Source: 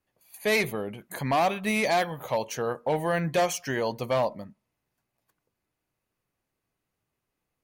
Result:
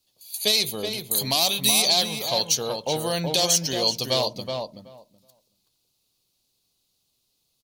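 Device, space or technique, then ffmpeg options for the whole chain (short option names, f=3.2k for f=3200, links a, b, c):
over-bright horn tweeter: -filter_complex "[0:a]asettb=1/sr,asplit=3[a][b][c];[a]atrim=end=0.874[d];[b]atrim=start=0.87:end=1.82,asetpts=PTS-STARTPTS,afade=t=in:d=0.004:c=qsin,afade=t=out:st=0.946:d=0.004:c=qsin,aemphasis=mode=production:type=50kf[e];[c]atrim=start=1.816[f];[d][e]acrossfade=d=0.004:c1=hsin:c2=qsin[g];[g][f]acrossfade=d=0.004:c1=qsin:c2=hsin,highshelf=f=2.7k:t=q:w=3:g=14,alimiter=limit=-8dB:level=0:latency=1:release=243,asplit=2[h][i];[i]adelay=375,lowpass=f=1.8k:p=1,volume=-4dB,asplit=2[j][k];[k]adelay=375,lowpass=f=1.8k:p=1,volume=0.15,asplit=2[l][m];[m]adelay=375,lowpass=f=1.8k:p=1,volume=0.15[n];[h][j][l][n]amix=inputs=4:normalize=0"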